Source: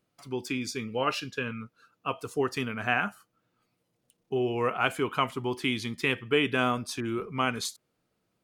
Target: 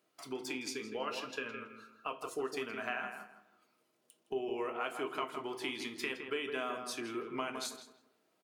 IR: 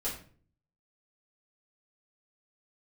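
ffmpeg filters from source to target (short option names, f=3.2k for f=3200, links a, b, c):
-filter_complex "[0:a]highpass=320,acompressor=threshold=-42dB:ratio=3,asplit=2[a][b];[b]adelay=163,lowpass=f=2k:p=1,volume=-6dB,asplit=2[c][d];[d]adelay=163,lowpass=f=2k:p=1,volume=0.31,asplit=2[e][f];[f]adelay=163,lowpass=f=2k:p=1,volume=0.31,asplit=2[g][h];[h]adelay=163,lowpass=f=2k:p=1,volume=0.31[i];[a][c][e][g][i]amix=inputs=5:normalize=0,asplit=2[j][k];[1:a]atrim=start_sample=2205,asetrate=61740,aresample=44100[l];[k][l]afir=irnorm=-1:irlink=0,volume=-5dB[m];[j][m]amix=inputs=2:normalize=0"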